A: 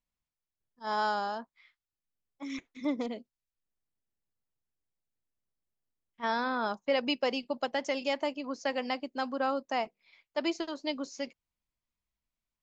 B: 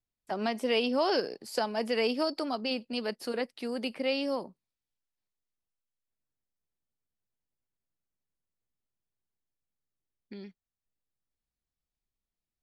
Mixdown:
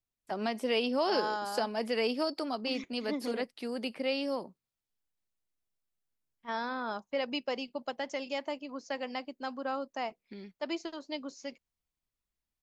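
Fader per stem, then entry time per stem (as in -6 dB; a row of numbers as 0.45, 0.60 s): -4.5, -2.0 dB; 0.25, 0.00 s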